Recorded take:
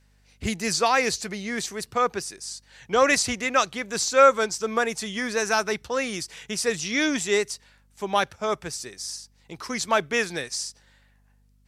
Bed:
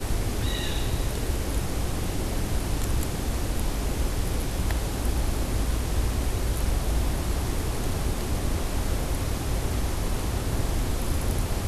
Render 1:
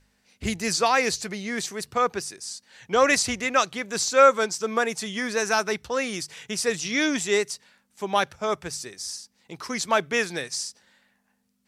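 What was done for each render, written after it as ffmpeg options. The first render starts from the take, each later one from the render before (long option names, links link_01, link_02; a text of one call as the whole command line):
ffmpeg -i in.wav -af "bandreject=frequency=50:width_type=h:width=4,bandreject=frequency=100:width_type=h:width=4,bandreject=frequency=150:width_type=h:width=4" out.wav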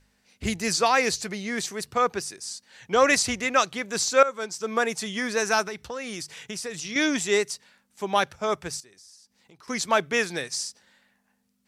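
ffmpeg -i in.wav -filter_complex "[0:a]asettb=1/sr,asplit=3[link_01][link_02][link_03];[link_01]atrim=end=5.624[link_04];[link_02]atrim=start=5.62:end=6.96,asetpts=PTS-STARTPTS,afade=type=in:duration=0.004:curve=qsin,afade=type=out:start_time=1.336:duration=0.004:curve=qsin,acompressor=threshold=-30dB:ratio=6:attack=3.2:release=140:knee=1:detection=peak[link_05];[link_03]atrim=start=6.956[link_06];[link_04][link_05]acrossfade=duration=0.004:curve1=hsin:curve2=qsin[link_07];[link_07][link_06]acrossfade=duration=0.004:curve1=qsin:curve2=hsin,asettb=1/sr,asplit=3[link_08][link_09][link_10];[link_08]atrim=end=8.804[link_11];[link_09]atrim=start=8.8:end=9.68,asetpts=PTS-STARTPTS,afade=type=in:duration=0.004:curve=qsin,afade=type=out:start_time=0.876:duration=0.004:curve=qsin,acompressor=threshold=-55dB:ratio=3:attack=3.2:release=140:knee=1:detection=peak[link_12];[link_10]atrim=start=9.676[link_13];[link_11][link_12]acrossfade=duration=0.004:curve1=hsin:curve2=qsin[link_14];[link_14][link_13]acrossfade=duration=0.004:curve1=qsin:curve2=hsin,asplit=2[link_15][link_16];[link_15]atrim=end=4.23,asetpts=PTS-STARTPTS,afade=type=out:start_time=4.226:duration=0.004:curve=hsin:silence=0.141254[link_17];[link_16]atrim=start=4.23,asetpts=PTS-STARTPTS,afade=type=in:duration=0.6:silence=0.141254[link_18];[link_17][link_18]concat=n=2:v=0:a=1" out.wav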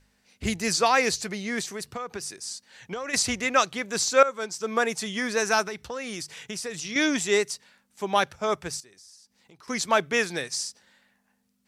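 ffmpeg -i in.wav -filter_complex "[0:a]asplit=3[link_01][link_02][link_03];[link_01]afade=type=out:start_time=1.62:duration=0.02[link_04];[link_02]acompressor=threshold=-29dB:ratio=16:attack=3.2:release=140:knee=1:detection=peak,afade=type=in:start_time=1.62:duration=0.02,afade=type=out:start_time=3.13:duration=0.02[link_05];[link_03]afade=type=in:start_time=3.13:duration=0.02[link_06];[link_04][link_05][link_06]amix=inputs=3:normalize=0" out.wav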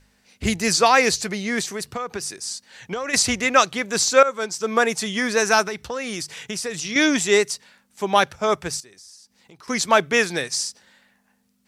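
ffmpeg -i in.wav -af "volume=5.5dB,alimiter=limit=-2dB:level=0:latency=1" out.wav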